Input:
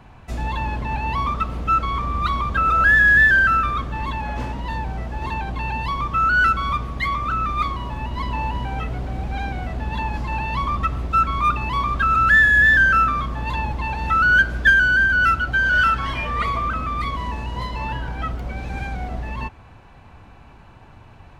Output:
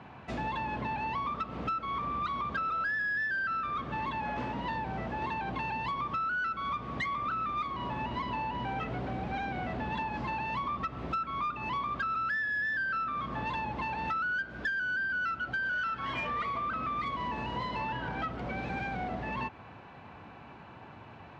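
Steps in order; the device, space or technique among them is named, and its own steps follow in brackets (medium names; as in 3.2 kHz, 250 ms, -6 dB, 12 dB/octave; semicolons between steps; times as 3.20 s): AM radio (band-pass 150–3700 Hz; compression 10:1, threshold -30 dBFS, peak gain reduction 19 dB; saturation -24 dBFS, distortion -25 dB)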